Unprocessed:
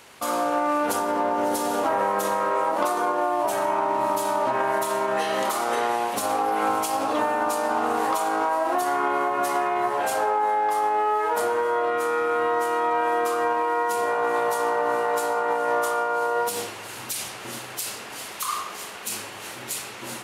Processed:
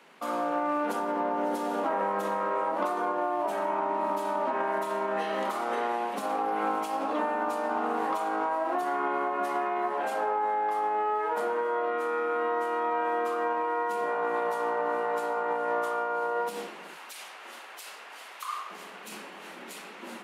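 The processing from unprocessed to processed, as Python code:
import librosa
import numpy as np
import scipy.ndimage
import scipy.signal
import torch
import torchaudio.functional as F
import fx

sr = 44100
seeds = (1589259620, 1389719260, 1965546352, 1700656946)

y = fx.highpass(x, sr, hz=650.0, slope=12, at=(16.94, 18.7))
y = scipy.signal.sosfilt(scipy.signal.butter(16, 160.0, 'highpass', fs=sr, output='sos'), y)
y = fx.bass_treble(y, sr, bass_db=4, treble_db=-12)
y = y * librosa.db_to_amplitude(-5.5)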